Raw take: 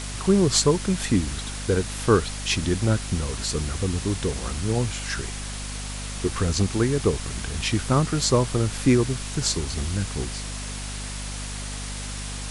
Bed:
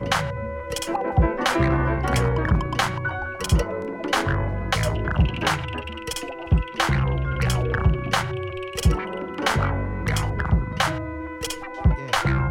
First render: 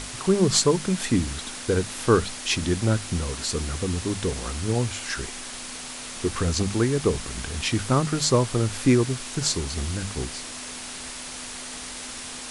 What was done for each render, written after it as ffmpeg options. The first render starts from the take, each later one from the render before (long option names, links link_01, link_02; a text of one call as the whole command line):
ffmpeg -i in.wav -af "bandreject=frequency=50:width_type=h:width=6,bandreject=frequency=100:width_type=h:width=6,bandreject=frequency=150:width_type=h:width=6,bandreject=frequency=200:width_type=h:width=6" out.wav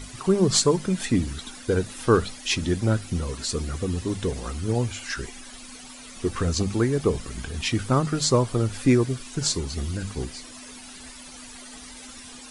ffmpeg -i in.wav -af "afftdn=noise_reduction=13:noise_floor=-37" out.wav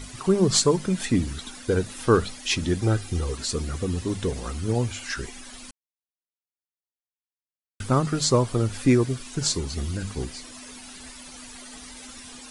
ffmpeg -i in.wav -filter_complex "[0:a]asettb=1/sr,asplit=3[link_01][link_02][link_03];[link_01]atrim=end=2.824[link_04];[link_02]atrim=start=2.82:end=3.36,asetpts=PTS-STARTPTS,afade=type=in:duration=0.004:curve=qsin,afade=type=out:start_time=0.536:duration=0.004:curve=qsin,aecho=1:1:2.5:0.55,atrim=end_sample=23814[link_05];[link_03]atrim=start=3.356[link_06];[link_04][link_05]acrossfade=duration=0.004:curve1=hsin:curve2=qsin[link_07];[link_07][link_06]acrossfade=duration=0.004:curve1=qsin:curve2=hsin,asplit=3[link_08][link_09][link_10];[link_08]atrim=end=5.71,asetpts=PTS-STARTPTS,afade=type=out:start_time=5.706:duration=0.004:curve=hsin[link_11];[link_09]atrim=start=5.71:end=7.8,asetpts=PTS-STARTPTS,volume=0[link_12];[link_10]atrim=start=7.8,asetpts=PTS-STARTPTS,afade=type=in:duration=0.004:curve=hsin[link_13];[link_11][link_12][link_13]concat=n=3:v=0:a=1" out.wav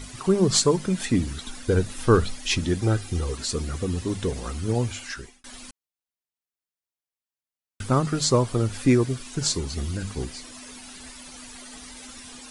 ffmpeg -i in.wav -filter_complex "[0:a]asettb=1/sr,asplit=3[link_01][link_02][link_03];[link_01]atrim=end=1.474[link_04];[link_02]atrim=start=1.47:end=2.61,asetpts=PTS-STARTPTS,afade=type=in:duration=0.004:curve=qsin,afade=type=out:start_time=1.136:duration=0.004:curve=qsin,lowshelf=frequency=77:gain=11[link_05];[link_03]atrim=start=2.606[link_06];[link_04][link_05]acrossfade=duration=0.004:curve1=hsin:curve2=qsin[link_07];[link_07][link_06]acrossfade=duration=0.004:curve1=qsin:curve2=hsin,asplit=2[link_08][link_09];[link_08]atrim=end=5.44,asetpts=PTS-STARTPTS,afade=type=out:start_time=4.95:duration=0.49[link_10];[link_09]atrim=start=5.44,asetpts=PTS-STARTPTS,afade=type=in:duration=0.004:curve=hsin[link_11];[link_10][link_11]concat=n=2:v=0:a=1" out.wav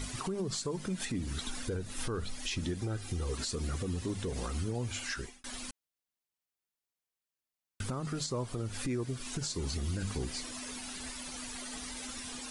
ffmpeg -i in.wav -af "acompressor=threshold=-29dB:ratio=4,alimiter=level_in=2dB:limit=-24dB:level=0:latency=1:release=114,volume=-2dB" out.wav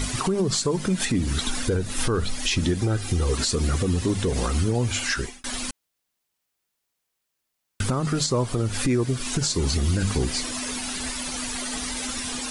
ffmpeg -i in.wav -af "volume=12dB" out.wav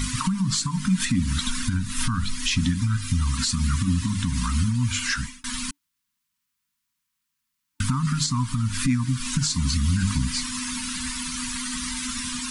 ffmpeg -i in.wav -af "equalizer=frequency=180:width=1.4:gain=3,afftfilt=real='re*(1-between(b*sr/4096,290,900))':imag='im*(1-between(b*sr/4096,290,900))':win_size=4096:overlap=0.75" out.wav